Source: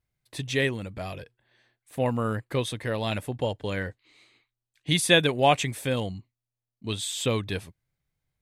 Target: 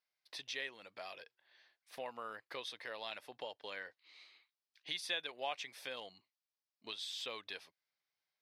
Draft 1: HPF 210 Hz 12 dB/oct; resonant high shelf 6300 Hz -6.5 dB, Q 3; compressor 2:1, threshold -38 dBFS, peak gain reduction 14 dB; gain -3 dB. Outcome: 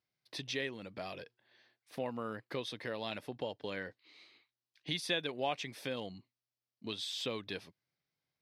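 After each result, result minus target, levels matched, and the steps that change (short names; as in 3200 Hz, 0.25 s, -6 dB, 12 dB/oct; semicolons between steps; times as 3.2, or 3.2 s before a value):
250 Hz band +12.5 dB; compressor: peak gain reduction -3 dB
change: HPF 700 Hz 12 dB/oct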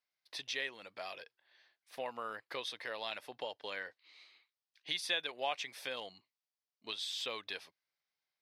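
compressor: peak gain reduction -4 dB
change: compressor 2:1, threshold -45.5 dBFS, peak gain reduction 16.5 dB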